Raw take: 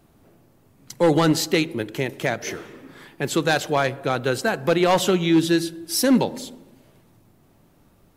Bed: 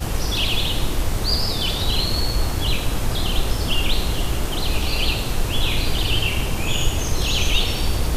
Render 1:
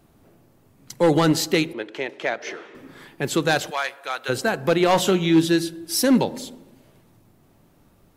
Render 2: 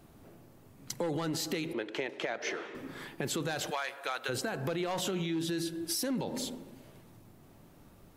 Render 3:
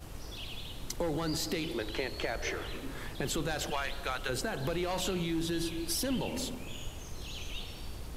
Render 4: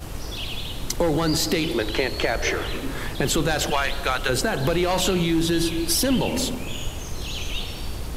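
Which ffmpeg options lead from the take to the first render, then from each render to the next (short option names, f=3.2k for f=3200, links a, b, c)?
-filter_complex "[0:a]asettb=1/sr,asplit=3[a][b][c];[a]atrim=end=1.734[d];[b]atrim=start=1.73:end=2.75,asetpts=PTS-STARTPTS,afade=t=in:d=0.004:c=qsin,afade=t=out:st=1.016:d=0.004:c=qsin,highpass=400,lowpass=4.2k[e];[c]atrim=start=2.746[f];[d][e]acrossfade=d=0.004:c1=hsin:c2=qsin[g];[g][f]acrossfade=d=0.004:c1=qsin:c2=hsin,asplit=3[h][i][j];[h]afade=t=out:st=3.69:d=0.02[k];[i]highpass=1k,afade=t=in:st=3.69:d=0.02,afade=t=out:st=4.28:d=0.02[l];[j]afade=t=in:st=4.28:d=0.02[m];[k][l][m]amix=inputs=3:normalize=0,asettb=1/sr,asplit=3[n][o][p];[n]atrim=end=4.804[q];[o]atrim=start=4.8:end=5.45,asetpts=PTS-STARTPTS,afade=t=in:d=0.004:c=qsin,afade=t=out:st=0.646:d=0.004:c=qsin,asplit=2[r][s];[s]adelay=31,volume=-13dB[t];[r][t]amix=inputs=2:normalize=0,atrim=end_sample=28665[u];[p]atrim=start=5.446[v];[q][u]acrossfade=d=0.004:c1=hsin:c2=qsin[w];[w][v]acrossfade=d=0.004:c1=qsin:c2=hsin"
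-af "alimiter=limit=-19dB:level=0:latency=1:release=20,acompressor=threshold=-31dB:ratio=5"
-filter_complex "[1:a]volume=-21.5dB[a];[0:a][a]amix=inputs=2:normalize=0"
-af "volume=11.5dB"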